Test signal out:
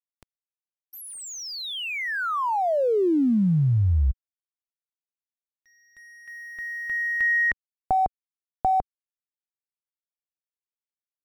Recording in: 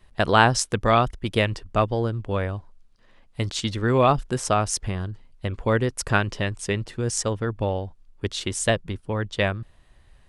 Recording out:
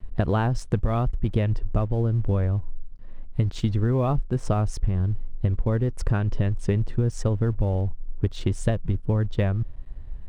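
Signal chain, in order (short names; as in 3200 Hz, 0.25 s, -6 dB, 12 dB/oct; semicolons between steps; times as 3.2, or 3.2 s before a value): tilt -4 dB/oct; compressor 16:1, threshold -18 dBFS; crossover distortion -51.5 dBFS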